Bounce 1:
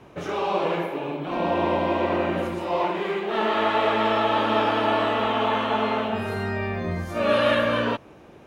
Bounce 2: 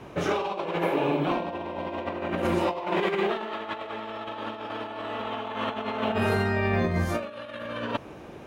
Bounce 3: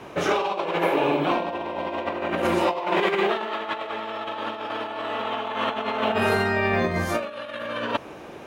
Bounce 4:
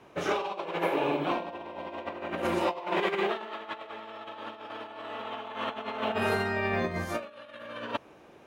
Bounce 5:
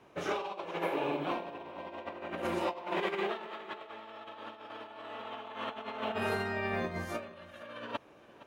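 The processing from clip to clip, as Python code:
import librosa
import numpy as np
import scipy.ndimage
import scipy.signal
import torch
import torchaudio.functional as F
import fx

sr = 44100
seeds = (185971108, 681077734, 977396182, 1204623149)

y1 = fx.over_compress(x, sr, threshold_db=-28.0, ratio=-0.5)
y2 = fx.low_shelf(y1, sr, hz=220.0, db=-10.5)
y2 = y2 * librosa.db_to_amplitude(5.5)
y3 = fx.upward_expand(y2, sr, threshold_db=-36.0, expansion=1.5)
y3 = y3 * librosa.db_to_amplitude(-5.0)
y4 = y3 + 10.0 ** (-18.0 / 20.0) * np.pad(y3, (int(465 * sr / 1000.0), 0))[:len(y3)]
y4 = y4 * librosa.db_to_amplitude(-5.0)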